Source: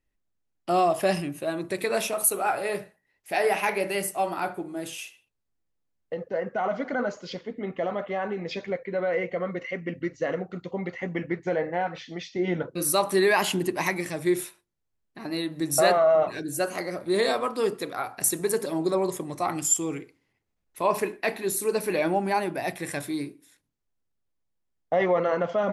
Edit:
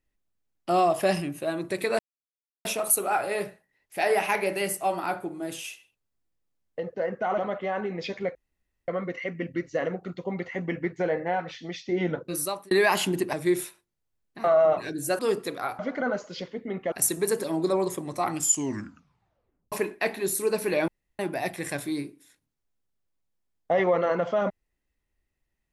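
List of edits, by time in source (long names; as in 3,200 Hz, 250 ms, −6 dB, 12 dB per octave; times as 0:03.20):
0:01.99: splice in silence 0.66 s
0:06.72–0:07.85: move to 0:18.14
0:08.82–0:09.35: fill with room tone
0:12.67–0:13.18: fade out
0:13.80–0:14.13: remove
0:15.24–0:15.94: remove
0:16.69–0:17.54: remove
0:19.69: tape stop 1.25 s
0:22.10–0:22.41: fill with room tone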